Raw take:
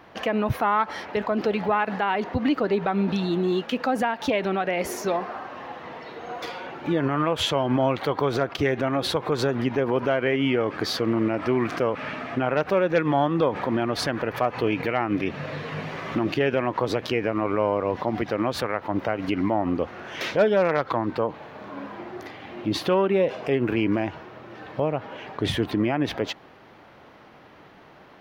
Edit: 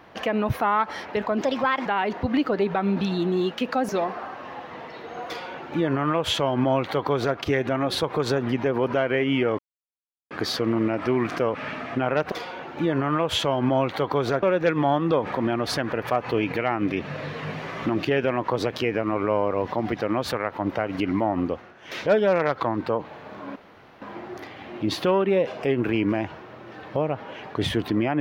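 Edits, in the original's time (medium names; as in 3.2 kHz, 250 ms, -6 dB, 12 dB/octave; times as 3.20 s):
1.42–1.97 s: speed 126%
4.00–5.01 s: delete
6.39–8.50 s: copy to 12.72 s
10.71 s: insert silence 0.72 s
19.73–20.40 s: dip -12.5 dB, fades 0.30 s
21.85 s: insert room tone 0.46 s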